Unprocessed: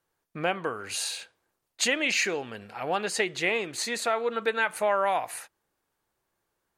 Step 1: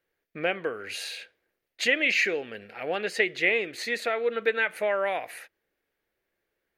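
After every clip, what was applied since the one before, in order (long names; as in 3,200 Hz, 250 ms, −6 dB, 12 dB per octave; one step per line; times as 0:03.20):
octave-band graphic EQ 125/500/1,000/2,000/8,000 Hz −6/+6/−11/+9/−11 dB
level −1.5 dB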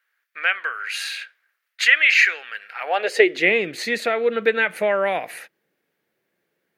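high-pass filter sweep 1,400 Hz → 160 Hz, 0:02.70–0:03.55
level +5.5 dB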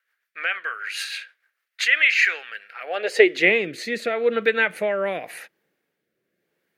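rotating-speaker cabinet horn 6.7 Hz, later 0.9 Hz, at 0:01.52
level +1 dB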